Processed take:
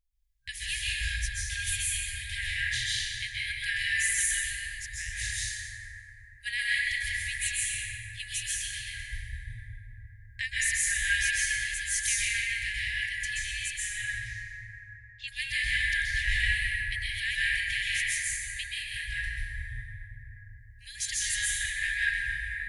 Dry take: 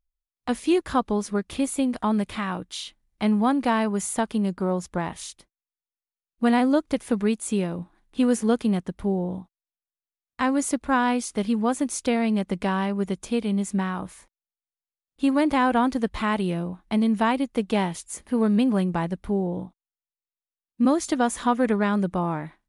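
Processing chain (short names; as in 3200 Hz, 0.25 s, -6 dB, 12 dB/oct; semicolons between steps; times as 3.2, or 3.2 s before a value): 13.95–15.28 steep low-pass 6200 Hz 36 dB/oct; plate-style reverb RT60 4.5 s, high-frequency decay 0.25×, pre-delay 0.115 s, DRR -9.5 dB; FFT band-reject 120–1600 Hz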